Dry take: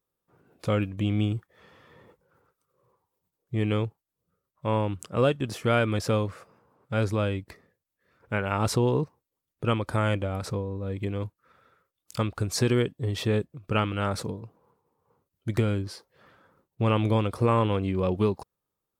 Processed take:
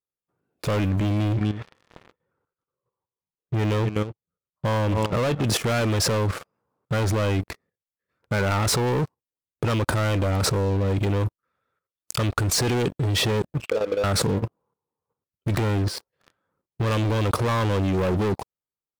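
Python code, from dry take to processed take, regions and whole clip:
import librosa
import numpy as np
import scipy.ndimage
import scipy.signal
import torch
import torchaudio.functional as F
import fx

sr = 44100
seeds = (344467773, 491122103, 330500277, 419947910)

y = fx.chain(x, sr, fx.lowpass(hz=3400.0, slope=12),
    fx.echo_single(ms=247, db=-15.0), at=(1.0, 5.44))
y = fx.chain(y, sr, fx.auto_wah(base_hz=490.0, top_hz=3500.0, q=12.0, full_db=-31.5, direction='down'),
    fx.pre_swell(db_per_s=26.0), at=(13.6, 14.04))
y = fx.leveller(y, sr, passes=5)
y = fx.level_steps(y, sr, step_db=11)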